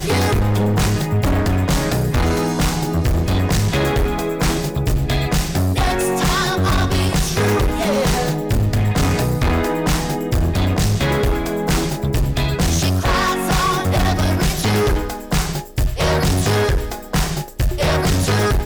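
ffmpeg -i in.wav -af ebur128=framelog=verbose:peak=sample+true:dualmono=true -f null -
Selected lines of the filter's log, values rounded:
Integrated loudness:
  I:         -15.5 LUFS
  Threshold: -25.4 LUFS
Loudness range:
  LRA:         1.1 LU
  Threshold: -35.5 LUFS
  LRA low:   -16.0 LUFS
  LRA high:  -14.9 LUFS
Sample peak:
  Peak:      -11.5 dBFS
True peak:
  Peak:      -11.4 dBFS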